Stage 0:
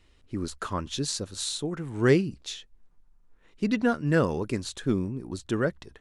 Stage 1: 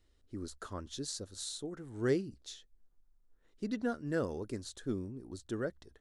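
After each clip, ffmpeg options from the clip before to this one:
-af "equalizer=f=160:t=o:w=0.67:g=-7,equalizer=f=1k:t=o:w=0.67:g=-6,equalizer=f=2.5k:t=o:w=0.67:g=-10,volume=-8.5dB"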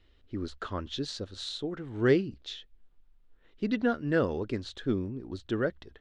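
-af "lowpass=f=3.1k:t=q:w=1.8,volume=7dB"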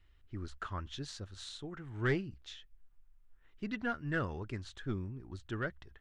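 -af "equalizer=f=250:t=o:w=1:g=-8,equalizer=f=500:t=o:w=1:g=-11,equalizer=f=4k:t=o:w=1:g=-9,aeval=exprs='0.106*(cos(1*acos(clip(val(0)/0.106,-1,1)))-cos(1*PI/2))+0.0211*(cos(2*acos(clip(val(0)/0.106,-1,1)))-cos(2*PI/2))+0.00168*(cos(7*acos(clip(val(0)/0.106,-1,1)))-cos(7*PI/2))':c=same"

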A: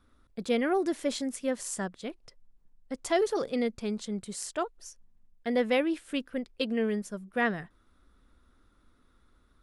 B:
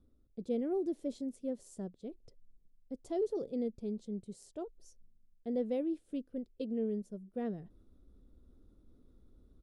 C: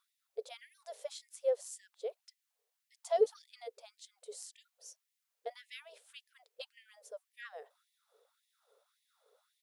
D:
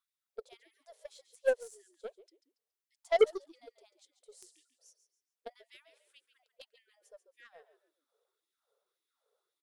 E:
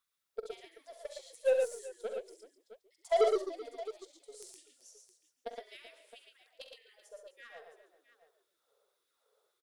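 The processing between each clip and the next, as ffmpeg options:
-af "firequalizer=gain_entry='entry(430,0);entry(1000,-18);entry(1700,-24);entry(3700,-15)':delay=0.05:min_phase=1,areverse,acompressor=mode=upward:threshold=-44dB:ratio=2.5,areverse,volume=-5.5dB"
-af "afftfilt=real='re*gte(b*sr/1024,390*pow(1800/390,0.5+0.5*sin(2*PI*1.8*pts/sr)))':imag='im*gte(b*sr/1024,390*pow(1800/390,0.5+0.5*sin(2*PI*1.8*pts/sr)))':win_size=1024:overlap=0.75,volume=10dB"
-filter_complex "[0:a]asplit=4[a][b][c][d];[b]adelay=140,afreqshift=-54,volume=-11dB[e];[c]adelay=280,afreqshift=-108,volume=-21.2dB[f];[d]adelay=420,afreqshift=-162,volume=-31.3dB[g];[a][e][f][g]amix=inputs=4:normalize=0,aeval=exprs='0.15*(cos(1*acos(clip(val(0)/0.15,-1,1)))-cos(1*PI/2))+0.00266*(cos(5*acos(clip(val(0)/0.15,-1,1)))-cos(5*PI/2))+0.0188*(cos(7*acos(clip(val(0)/0.15,-1,1)))-cos(7*PI/2))+0.000944*(cos(8*acos(clip(val(0)/0.15,-1,1)))-cos(8*PI/2))':c=same,volume=3.5dB"
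-filter_complex "[0:a]asoftclip=type=tanh:threshold=-24.5dB,asplit=2[a][b];[b]aecho=0:1:46|67|115|382|665:0.251|0.335|0.631|0.126|0.188[c];[a][c]amix=inputs=2:normalize=0,volume=4dB"

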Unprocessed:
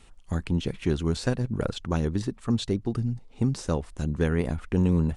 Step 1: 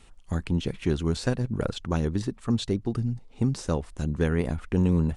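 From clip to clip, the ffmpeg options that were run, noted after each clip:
-af anull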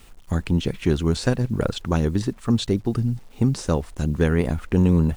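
-af "acrusher=bits=9:mix=0:aa=0.000001,volume=5dB"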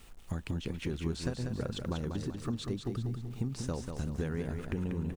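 -filter_complex "[0:a]acompressor=threshold=-26dB:ratio=6,asplit=2[a][b];[b]aecho=0:1:191|382|573|764|955:0.501|0.226|0.101|0.0457|0.0206[c];[a][c]amix=inputs=2:normalize=0,volume=-6dB"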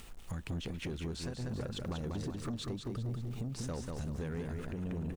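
-af "alimiter=level_in=2.5dB:limit=-24dB:level=0:latency=1:release=402,volume=-2.5dB,acompressor=mode=upward:threshold=-54dB:ratio=2.5,asoftclip=type=tanh:threshold=-35dB,volume=3dB"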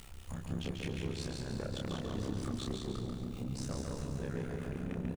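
-filter_complex "[0:a]tremolo=f=65:d=0.947,asplit=2[a][b];[b]adelay=29,volume=-3dB[c];[a][c]amix=inputs=2:normalize=0,aecho=1:1:141|282|423|564|705|846:0.596|0.292|0.143|0.0701|0.0343|0.0168,volume=1.5dB"

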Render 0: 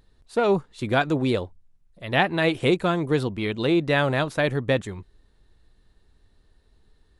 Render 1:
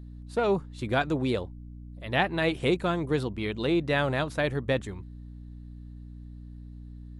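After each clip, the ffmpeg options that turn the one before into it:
-af "aeval=exprs='val(0)+0.0141*(sin(2*PI*60*n/s)+sin(2*PI*2*60*n/s)/2+sin(2*PI*3*60*n/s)/3+sin(2*PI*4*60*n/s)/4+sin(2*PI*5*60*n/s)/5)':c=same,volume=-4.5dB"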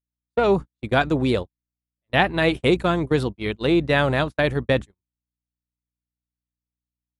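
-af "agate=range=-54dB:threshold=-30dB:ratio=16:detection=peak,volume=6.5dB"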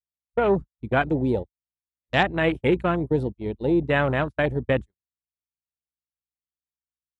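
-af "afwtdn=0.0398,volume=-2dB"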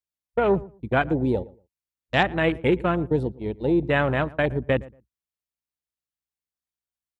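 -filter_complex "[0:a]asplit=2[a][b];[b]adelay=116,lowpass=f=1.3k:p=1,volume=-20dB,asplit=2[c][d];[d]adelay=116,lowpass=f=1.3k:p=1,volume=0.2[e];[a][c][e]amix=inputs=3:normalize=0"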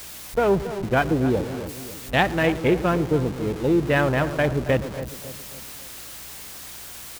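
-filter_complex "[0:a]aeval=exprs='val(0)+0.5*0.0355*sgn(val(0))':c=same,asplit=2[a][b];[b]adelay=276,lowpass=f=1.2k:p=1,volume=-11.5dB,asplit=2[c][d];[d]adelay=276,lowpass=f=1.2k:p=1,volume=0.48,asplit=2[e][f];[f]adelay=276,lowpass=f=1.2k:p=1,volume=0.48,asplit=2[g][h];[h]adelay=276,lowpass=f=1.2k:p=1,volume=0.48,asplit=2[i][j];[j]adelay=276,lowpass=f=1.2k:p=1,volume=0.48[k];[a][c][e][g][i][k]amix=inputs=6:normalize=0"

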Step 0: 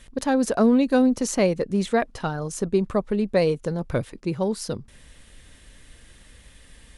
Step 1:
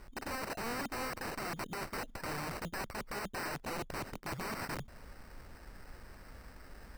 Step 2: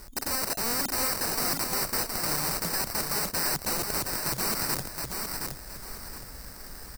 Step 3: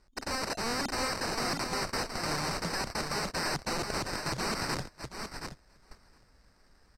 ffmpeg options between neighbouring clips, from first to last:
-af "areverse,acompressor=threshold=-27dB:ratio=16,areverse,acrusher=samples=13:mix=1:aa=0.000001,aeval=exprs='(mod(35.5*val(0)+1,2)-1)/35.5':c=same,volume=-2.5dB"
-filter_complex "[0:a]asplit=2[a][b];[b]aecho=0:1:718|1436|2154|2872:0.596|0.191|0.061|0.0195[c];[a][c]amix=inputs=2:normalize=0,aexciter=amount=3.4:drive=6.8:freq=4.2k,volume=5dB"
-af "lowpass=5k,agate=range=-18dB:threshold=-36dB:ratio=16:detection=peak"

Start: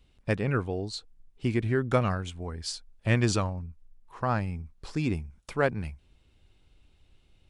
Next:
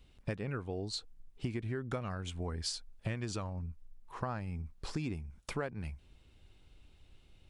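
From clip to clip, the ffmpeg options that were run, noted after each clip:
-af "acompressor=threshold=-34dB:ratio=16,volume=1dB"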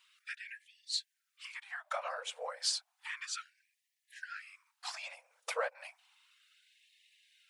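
-af "afftfilt=real='hypot(re,im)*cos(2*PI*random(0))':imag='hypot(re,im)*sin(2*PI*random(1))':win_size=512:overlap=0.75,afftfilt=real='re*gte(b*sr/1024,460*pow(1700/460,0.5+0.5*sin(2*PI*0.32*pts/sr)))':imag='im*gte(b*sr/1024,460*pow(1700/460,0.5+0.5*sin(2*PI*0.32*pts/sr)))':win_size=1024:overlap=0.75,volume=11dB"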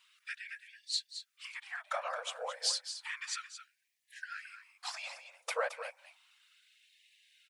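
-af "aecho=1:1:220:0.299,volume=1dB"

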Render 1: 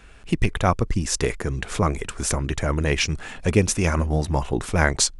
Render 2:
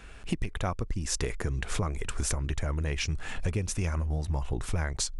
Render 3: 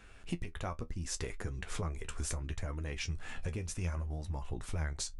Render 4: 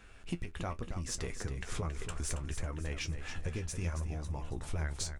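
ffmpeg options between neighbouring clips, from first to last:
-af "asubboost=boost=3:cutoff=130,acompressor=threshold=-26dB:ratio=10"
-af "flanger=delay=9.6:depth=3.7:regen=49:speed=0.71:shape=triangular,volume=-3.5dB"
-filter_complex "[0:a]aeval=exprs='0.0841*(cos(1*acos(clip(val(0)/0.0841,-1,1)))-cos(1*PI/2))+0.0015*(cos(8*acos(clip(val(0)/0.0841,-1,1)))-cos(8*PI/2))':c=same,asplit=2[a][b];[b]aecho=0:1:275|550|825|1100:0.355|0.142|0.0568|0.0227[c];[a][c]amix=inputs=2:normalize=0"

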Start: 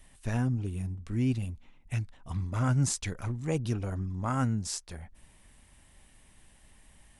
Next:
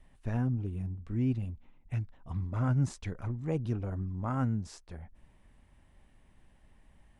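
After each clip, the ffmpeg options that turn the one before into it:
-af "lowpass=f=1.2k:p=1,volume=-1.5dB"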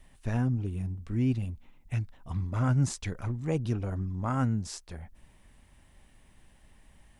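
-af "highshelf=f=2.8k:g=9,volume=2.5dB"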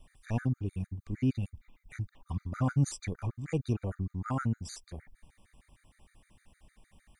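-af "afftfilt=real='re*gt(sin(2*PI*6.5*pts/sr)*(1-2*mod(floor(b*sr/1024/1200),2)),0)':imag='im*gt(sin(2*PI*6.5*pts/sr)*(1-2*mod(floor(b*sr/1024/1200),2)),0)':win_size=1024:overlap=0.75"

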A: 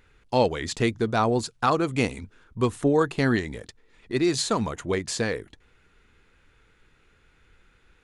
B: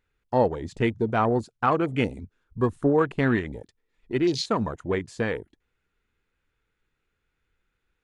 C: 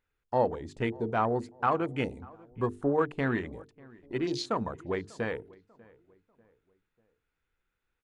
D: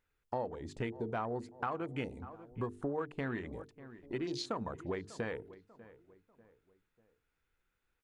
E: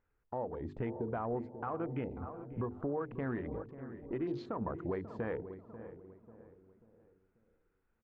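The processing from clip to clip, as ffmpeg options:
-af "afwtdn=0.0251"
-filter_complex "[0:a]equalizer=f=840:t=o:w=2:g=3.5,bandreject=f=50:t=h:w=6,bandreject=f=100:t=h:w=6,bandreject=f=150:t=h:w=6,bandreject=f=200:t=h:w=6,bandreject=f=250:t=h:w=6,bandreject=f=300:t=h:w=6,bandreject=f=350:t=h:w=6,bandreject=f=400:t=h:w=6,bandreject=f=450:t=h:w=6,asplit=2[a][b];[b]adelay=593,lowpass=f=1.6k:p=1,volume=-23dB,asplit=2[c][d];[d]adelay=593,lowpass=f=1.6k:p=1,volume=0.41,asplit=2[e][f];[f]adelay=593,lowpass=f=1.6k:p=1,volume=0.41[g];[a][c][e][g]amix=inputs=4:normalize=0,volume=-7dB"
-af "acompressor=threshold=-35dB:ratio=4"
-filter_complex "[0:a]lowpass=1.4k,alimiter=level_in=7dB:limit=-24dB:level=0:latency=1:release=122,volume=-7dB,asplit=2[a][b];[b]adelay=540,lowpass=f=820:p=1,volume=-12dB,asplit=2[c][d];[d]adelay=540,lowpass=f=820:p=1,volume=0.43,asplit=2[e][f];[f]adelay=540,lowpass=f=820:p=1,volume=0.43,asplit=2[g][h];[h]adelay=540,lowpass=f=820:p=1,volume=0.43[i];[a][c][e][g][i]amix=inputs=5:normalize=0,volume=3.5dB"

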